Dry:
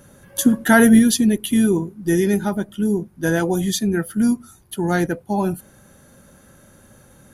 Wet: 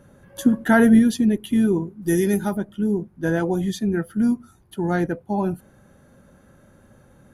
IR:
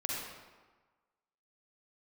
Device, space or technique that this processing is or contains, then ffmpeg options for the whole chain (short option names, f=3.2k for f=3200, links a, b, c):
through cloth: -filter_complex "[0:a]highshelf=f=3.2k:g=-13,asplit=3[a][b][c];[a]afade=t=out:st=2.01:d=0.02[d];[b]aemphasis=mode=production:type=75kf,afade=t=in:st=2.01:d=0.02,afade=t=out:st=2.56:d=0.02[e];[c]afade=t=in:st=2.56:d=0.02[f];[d][e][f]amix=inputs=3:normalize=0,volume=-2dB"